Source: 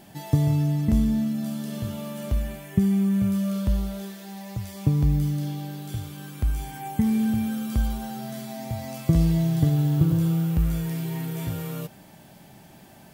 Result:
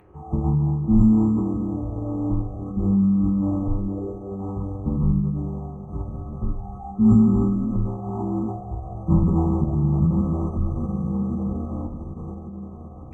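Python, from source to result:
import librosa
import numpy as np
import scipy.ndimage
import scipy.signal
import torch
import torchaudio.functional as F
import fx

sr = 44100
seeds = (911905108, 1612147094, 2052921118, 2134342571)

y = fx.freq_compress(x, sr, knee_hz=1400.0, ratio=4.0)
y = fx.peak_eq(y, sr, hz=2000.0, db=-7.5, octaves=0.61)
y = fx.echo_diffused(y, sr, ms=1224, feedback_pct=43, wet_db=-10.5)
y = fx.rev_fdn(y, sr, rt60_s=0.93, lf_ratio=1.45, hf_ratio=0.85, size_ms=14.0, drr_db=-1.5)
y = np.repeat(scipy.signal.resample_poly(y, 1, 3), 3)[:len(y)]
y = fx.pitch_keep_formants(y, sr, semitones=-12.0)
y = y * librosa.db_to_amplitude(-2.5)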